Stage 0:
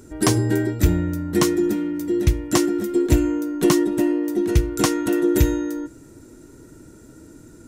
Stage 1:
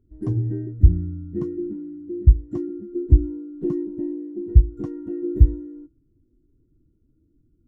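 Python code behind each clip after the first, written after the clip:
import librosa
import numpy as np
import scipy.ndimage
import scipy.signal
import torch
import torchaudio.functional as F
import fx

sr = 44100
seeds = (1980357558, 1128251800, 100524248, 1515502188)

y = fx.tilt_eq(x, sr, slope=-3.5)
y = fx.spectral_expand(y, sr, expansion=1.5)
y = y * 10.0 ** (-8.0 / 20.0)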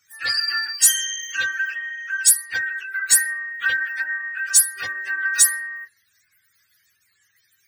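y = fx.octave_mirror(x, sr, pivot_hz=740.0)
y = 10.0 ** (-11.5 / 20.0) * np.tanh(y / 10.0 ** (-11.5 / 20.0))
y = y * 10.0 ** (7.0 / 20.0)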